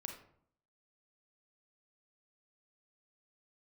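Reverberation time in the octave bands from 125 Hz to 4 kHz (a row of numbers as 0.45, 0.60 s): 0.75, 0.75, 0.65, 0.60, 0.45, 0.35 s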